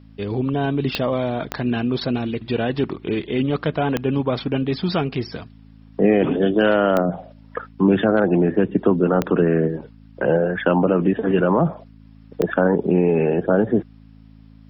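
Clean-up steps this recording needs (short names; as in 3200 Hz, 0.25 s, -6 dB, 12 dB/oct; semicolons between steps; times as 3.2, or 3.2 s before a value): de-click; de-hum 54 Hz, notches 5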